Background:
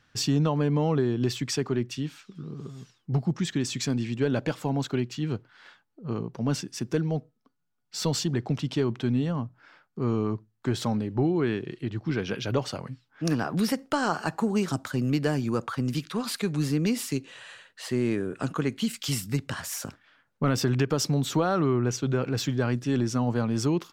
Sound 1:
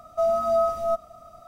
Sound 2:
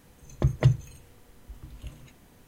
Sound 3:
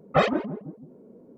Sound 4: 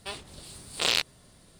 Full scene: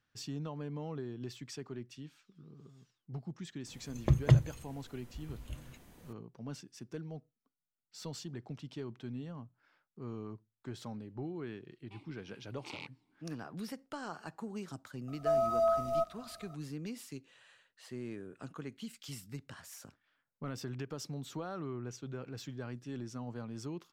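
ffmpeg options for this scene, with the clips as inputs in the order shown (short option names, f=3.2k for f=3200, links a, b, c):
-filter_complex "[0:a]volume=-16.5dB[a];[4:a]asplit=3[b][c][d];[b]bandpass=f=300:t=q:w=8,volume=0dB[e];[c]bandpass=f=870:t=q:w=8,volume=-6dB[f];[d]bandpass=f=2.24k:t=q:w=8,volume=-9dB[g];[e][f][g]amix=inputs=3:normalize=0[h];[2:a]atrim=end=2.47,asetpts=PTS-STARTPTS,volume=-2.5dB,afade=t=in:d=0.004:c=hsin,afade=t=out:st=2.466:d=0.004:c=hsin,adelay=3660[i];[h]atrim=end=1.59,asetpts=PTS-STARTPTS,volume=-3.5dB,afade=t=in:d=0.004:c=hsin,afade=t=out:st=1.586:d=0.004:c=hsin,adelay=11850[j];[1:a]atrim=end=1.47,asetpts=PTS-STARTPTS,volume=-7dB,afade=t=in:d=0.004:c=hsin,afade=t=out:st=1.466:d=0.004:c=hsin,adelay=665028S[k];[a][i][j][k]amix=inputs=4:normalize=0"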